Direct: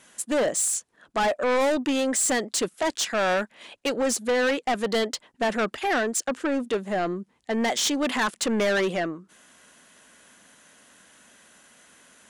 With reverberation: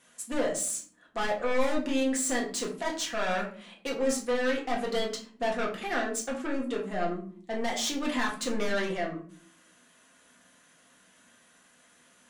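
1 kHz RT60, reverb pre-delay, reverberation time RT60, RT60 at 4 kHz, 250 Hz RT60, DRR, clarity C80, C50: 0.40 s, 4 ms, 0.50 s, 0.30 s, 0.90 s, -2.0 dB, 13.5 dB, 8.5 dB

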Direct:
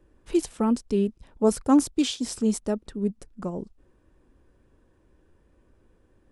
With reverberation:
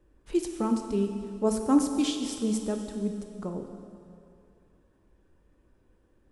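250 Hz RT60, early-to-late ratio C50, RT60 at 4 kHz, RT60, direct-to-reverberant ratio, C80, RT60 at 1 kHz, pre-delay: 2.5 s, 6.0 dB, 2.3 s, 2.5 s, 4.5 dB, 7.0 dB, 2.5 s, 5 ms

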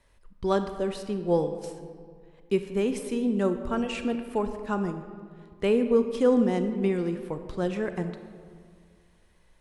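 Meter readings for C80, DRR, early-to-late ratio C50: 10.0 dB, 8.0 dB, 9.0 dB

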